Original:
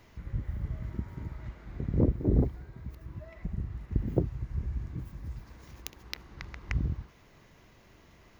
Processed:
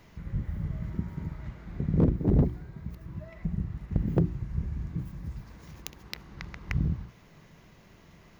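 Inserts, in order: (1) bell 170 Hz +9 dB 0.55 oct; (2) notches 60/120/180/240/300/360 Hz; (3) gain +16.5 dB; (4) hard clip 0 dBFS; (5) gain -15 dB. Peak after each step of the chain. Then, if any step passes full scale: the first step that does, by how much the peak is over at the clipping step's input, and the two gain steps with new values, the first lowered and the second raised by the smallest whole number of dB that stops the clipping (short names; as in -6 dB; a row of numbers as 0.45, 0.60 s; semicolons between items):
-9.5, -8.5, +8.0, 0.0, -15.0 dBFS; step 3, 8.0 dB; step 3 +8.5 dB, step 5 -7 dB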